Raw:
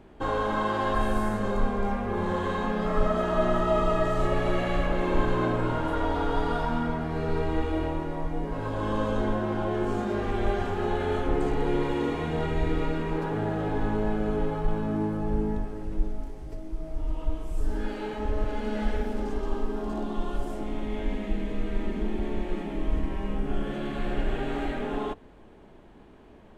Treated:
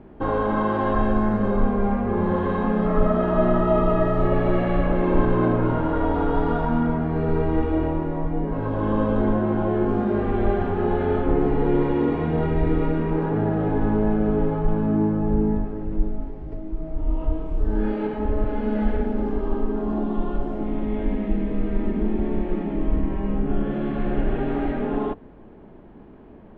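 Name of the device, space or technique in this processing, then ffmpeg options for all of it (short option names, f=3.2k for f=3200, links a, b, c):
phone in a pocket: -filter_complex "[0:a]lowpass=3.1k,equalizer=f=210:t=o:w=1.8:g=4.5,highshelf=f=2.3k:g=-9.5,asettb=1/sr,asplit=3[a][b][c];[a]atrim=end=17.044[d];[b]atrim=start=17.04:end=18.07,asetpts=PTS-STARTPTS,afade=t=in:d=0.004:c=qsin,afade=t=out:st=1.026:d=0.004:c=qsin,asplit=2[e][f];[f]adelay=28,volume=-4dB[g];[e][g]amix=inputs=2:normalize=0,atrim=end_sample=45423[h];[c]atrim=start=18.066[i];[d][h]acrossfade=d=0.004:c1=hsin:c2=qsin[j];[j][i]acrossfade=d=0.004:c1=qsin:c2=hsin,volume=4dB"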